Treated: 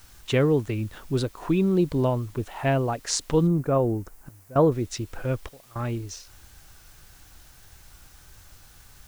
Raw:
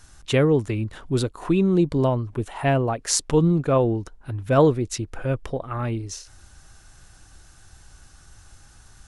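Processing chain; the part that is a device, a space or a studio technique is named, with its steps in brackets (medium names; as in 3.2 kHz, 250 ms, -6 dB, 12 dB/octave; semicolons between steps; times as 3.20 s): worn cassette (low-pass 7.3 kHz; wow and flutter; level dips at 4.29/5.49 s, 264 ms -20 dB; white noise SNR 29 dB); 3.47–4.72 s: peaking EQ 3.5 kHz -12.5 dB 1.3 oct; trim -2.5 dB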